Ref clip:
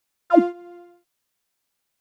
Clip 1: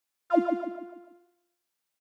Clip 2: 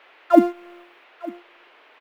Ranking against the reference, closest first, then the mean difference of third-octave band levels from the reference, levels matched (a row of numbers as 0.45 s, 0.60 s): 2, 1; 2.5 dB, 5.5 dB